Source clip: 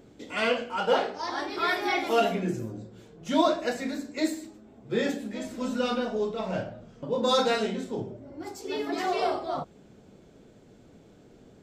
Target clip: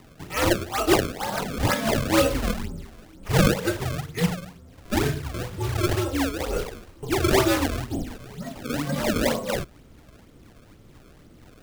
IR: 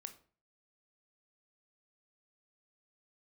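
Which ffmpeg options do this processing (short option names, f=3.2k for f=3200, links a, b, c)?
-af "acrusher=samples=25:mix=1:aa=0.000001:lfo=1:lforange=40:lforate=2.1,afreqshift=-140,volume=4dB"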